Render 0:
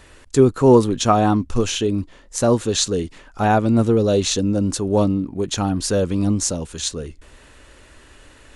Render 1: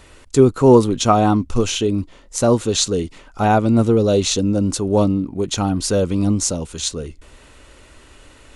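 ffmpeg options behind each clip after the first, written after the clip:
-af "bandreject=f=1.7k:w=8.6,volume=1.5dB"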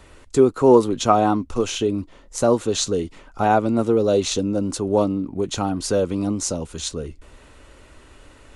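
-filter_complex "[0:a]acrossover=split=250|1900[a][b][c];[a]acompressor=threshold=-27dB:ratio=6[d];[c]flanger=delay=2.8:depth=5.4:regen=59:speed=1.9:shape=triangular[e];[d][b][e]amix=inputs=3:normalize=0,volume=-1dB"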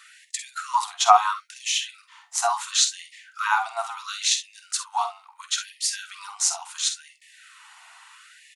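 -af "highpass=f=500:w=0.5412,highpass=f=500:w=1.3066,aecho=1:1:48|62:0.299|0.188,afftfilt=real='re*gte(b*sr/1024,660*pow(1700/660,0.5+0.5*sin(2*PI*0.73*pts/sr)))':imag='im*gte(b*sr/1024,660*pow(1700/660,0.5+0.5*sin(2*PI*0.73*pts/sr)))':win_size=1024:overlap=0.75,volume=4dB"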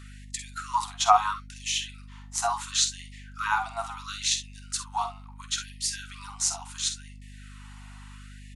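-af "aeval=exprs='val(0)+0.01*(sin(2*PI*50*n/s)+sin(2*PI*2*50*n/s)/2+sin(2*PI*3*50*n/s)/3+sin(2*PI*4*50*n/s)/4+sin(2*PI*5*50*n/s)/5)':c=same,volume=-4dB"

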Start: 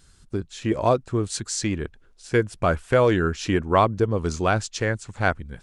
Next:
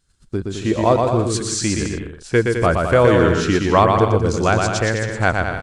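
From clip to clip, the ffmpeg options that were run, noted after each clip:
-af "agate=range=-16dB:threshold=-51dB:ratio=16:detection=peak,aecho=1:1:120|210|277.5|328.1|366.1:0.631|0.398|0.251|0.158|0.1,volume=4dB"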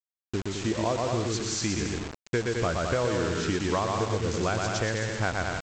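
-af "acompressor=threshold=-17dB:ratio=6,aresample=16000,acrusher=bits=4:mix=0:aa=0.000001,aresample=44100,volume=-6.5dB"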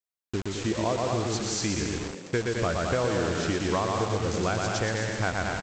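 -filter_complex "[0:a]asplit=5[a][b][c][d][e];[b]adelay=235,afreqshift=93,volume=-11dB[f];[c]adelay=470,afreqshift=186,volume=-20.1dB[g];[d]adelay=705,afreqshift=279,volume=-29.2dB[h];[e]adelay=940,afreqshift=372,volume=-38.4dB[i];[a][f][g][h][i]amix=inputs=5:normalize=0"

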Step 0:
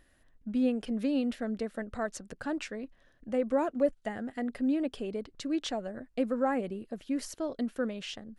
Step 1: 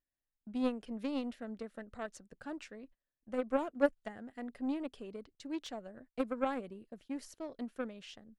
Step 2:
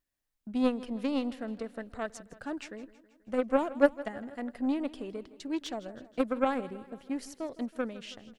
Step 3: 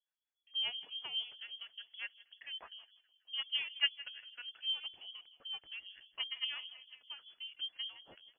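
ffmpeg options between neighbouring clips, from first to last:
-af "aeval=exprs='0.168*(cos(1*acos(clip(val(0)/0.168,-1,1)))-cos(1*PI/2))+0.0422*(cos(3*acos(clip(val(0)/0.168,-1,1)))-cos(3*PI/2))':c=same,agate=range=-20dB:threshold=-59dB:ratio=16:detection=peak,volume=1dB"
-af "aecho=1:1:161|322|483|644|805:0.126|0.0718|0.0409|0.0233|0.0133,volume=6dB"
-filter_complex "[0:a]acrossover=split=480[a][b];[a]aeval=exprs='val(0)*(1-1/2+1/2*cos(2*PI*5.1*n/s))':c=same[c];[b]aeval=exprs='val(0)*(1-1/2-1/2*cos(2*PI*5.1*n/s))':c=same[d];[c][d]amix=inputs=2:normalize=0,lowpass=f=2.9k:t=q:w=0.5098,lowpass=f=2.9k:t=q:w=0.6013,lowpass=f=2.9k:t=q:w=0.9,lowpass=f=2.9k:t=q:w=2.563,afreqshift=-3400,volume=-5dB"

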